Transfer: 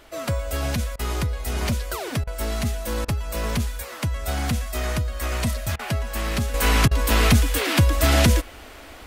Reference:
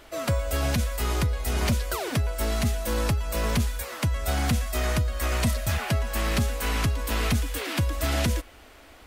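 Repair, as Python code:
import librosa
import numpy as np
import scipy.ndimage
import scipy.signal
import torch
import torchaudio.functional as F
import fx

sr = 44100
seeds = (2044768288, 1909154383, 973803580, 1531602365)

y = fx.fix_interpolate(x, sr, at_s=(0.96, 2.24, 3.05, 5.76, 6.88), length_ms=31.0)
y = fx.fix_level(y, sr, at_s=6.54, step_db=-8.0)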